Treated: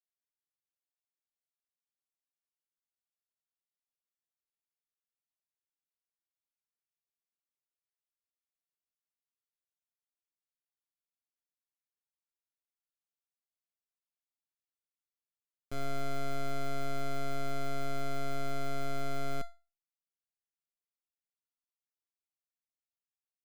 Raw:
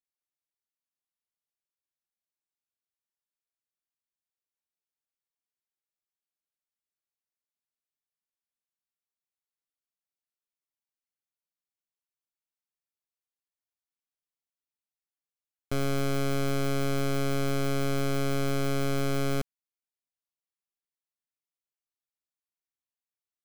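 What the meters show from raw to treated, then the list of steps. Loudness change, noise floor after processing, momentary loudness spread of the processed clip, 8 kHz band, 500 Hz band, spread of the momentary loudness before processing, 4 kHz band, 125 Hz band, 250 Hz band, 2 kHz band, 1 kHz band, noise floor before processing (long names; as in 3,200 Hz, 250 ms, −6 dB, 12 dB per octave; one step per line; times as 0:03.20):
−9.0 dB, below −85 dBFS, 3 LU, −10.5 dB, −8.5 dB, 3 LU, −9.0 dB, −12.0 dB, −12.5 dB, −8.5 dB, −2.5 dB, below −85 dBFS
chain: tuned comb filter 690 Hz, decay 0.29 s, mix 80%
level +1 dB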